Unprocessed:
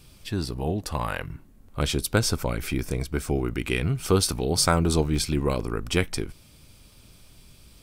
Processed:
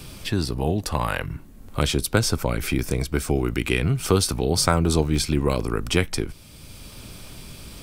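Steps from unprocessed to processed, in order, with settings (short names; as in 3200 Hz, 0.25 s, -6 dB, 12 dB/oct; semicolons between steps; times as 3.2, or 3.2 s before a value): three-band squash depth 40%; gain +3 dB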